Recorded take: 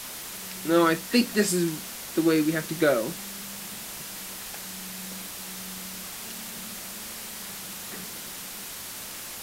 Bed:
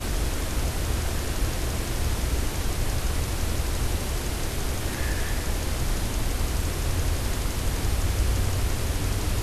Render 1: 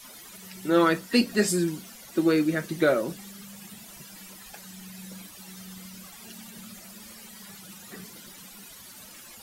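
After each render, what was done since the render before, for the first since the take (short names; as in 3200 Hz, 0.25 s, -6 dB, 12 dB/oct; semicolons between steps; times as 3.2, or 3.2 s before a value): denoiser 14 dB, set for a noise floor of -39 dBFS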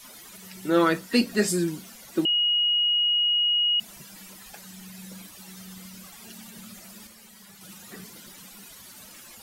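2.25–3.8 bleep 2890 Hz -19.5 dBFS; 7.07–7.61 gain -4.5 dB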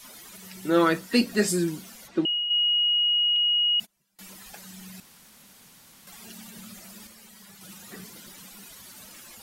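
2.07–2.49 LPF 4300 Hz -> 2100 Hz; 3.36–4.19 gate -40 dBFS, range -29 dB; 5–6.07 room tone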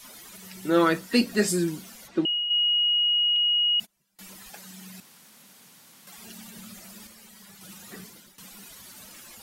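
4.49–6.18 HPF 130 Hz; 7.98–8.38 fade out, to -13.5 dB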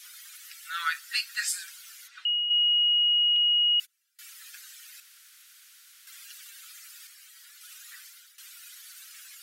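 elliptic high-pass 1400 Hz, stop band 60 dB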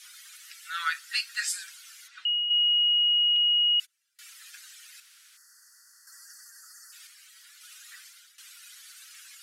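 LPF 11000 Hz 12 dB/oct; 5.37–6.93 spectral gain 2000–4300 Hz -30 dB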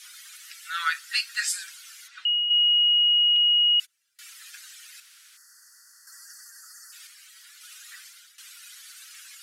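gain +3 dB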